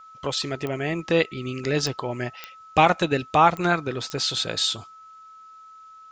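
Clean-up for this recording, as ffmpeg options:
-af "adeclick=t=4,bandreject=f=1.3k:w=30,agate=range=-21dB:threshold=-39dB"

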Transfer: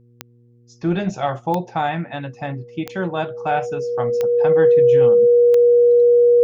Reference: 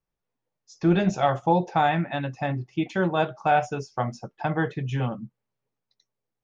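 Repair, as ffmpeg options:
-af "adeclick=t=4,bandreject=f=119.5:t=h:w=4,bandreject=f=239:t=h:w=4,bandreject=f=358.5:t=h:w=4,bandreject=f=478:t=h:w=4,bandreject=f=480:w=30"

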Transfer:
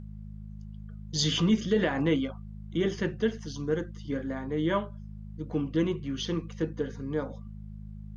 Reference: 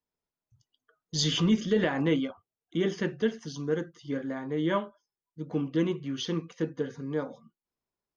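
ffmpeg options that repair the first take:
-af "bandreject=f=52.2:t=h:w=4,bandreject=f=104.4:t=h:w=4,bandreject=f=156.6:t=h:w=4,bandreject=f=208.8:t=h:w=4,agate=range=-21dB:threshold=-34dB"

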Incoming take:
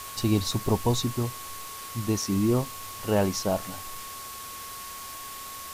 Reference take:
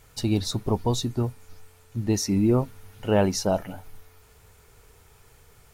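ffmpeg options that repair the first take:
-af "bandreject=f=1.1k:w=30,afwtdn=0.01,asetnsamples=n=441:p=0,asendcmd='1.15 volume volume 3dB',volume=0dB"

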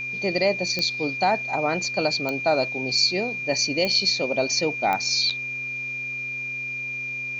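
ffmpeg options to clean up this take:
-af "adeclick=t=4,bandreject=f=128:t=h:w=4,bandreject=f=256:t=h:w=4,bandreject=f=384:t=h:w=4,bandreject=f=512:t=h:w=4,bandreject=f=2.4k:w=30,agate=range=-21dB:threshold=-23dB"

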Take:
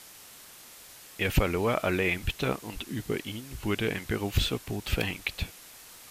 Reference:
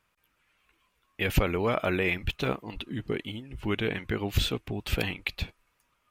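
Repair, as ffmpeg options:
-af "afwtdn=0.004,asetnsamples=n=441:p=0,asendcmd='5.7 volume volume -9dB',volume=0dB"

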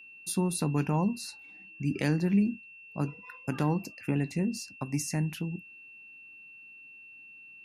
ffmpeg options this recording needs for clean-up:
-af "bandreject=f=2.7k:w=30"

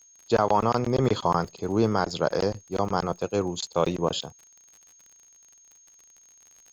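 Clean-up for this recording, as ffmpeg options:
-af "adeclick=t=4,bandreject=f=6.5k:w=30,agate=range=-21dB:threshold=-48dB"

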